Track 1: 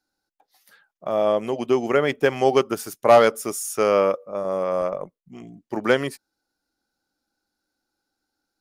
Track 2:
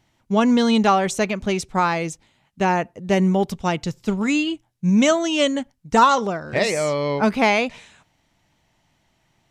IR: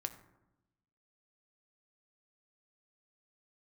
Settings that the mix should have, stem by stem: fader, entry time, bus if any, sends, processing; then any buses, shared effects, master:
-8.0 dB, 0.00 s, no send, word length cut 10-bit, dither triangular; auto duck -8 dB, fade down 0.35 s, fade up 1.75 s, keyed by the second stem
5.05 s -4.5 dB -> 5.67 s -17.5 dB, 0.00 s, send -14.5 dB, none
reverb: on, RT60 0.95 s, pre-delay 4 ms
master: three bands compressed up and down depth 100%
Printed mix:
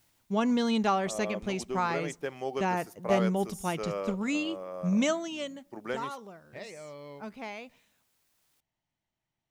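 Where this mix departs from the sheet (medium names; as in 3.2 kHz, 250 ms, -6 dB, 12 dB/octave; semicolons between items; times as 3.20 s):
stem 2 -4.5 dB -> -11.0 dB; master: missing three bands compressed up and down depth 100%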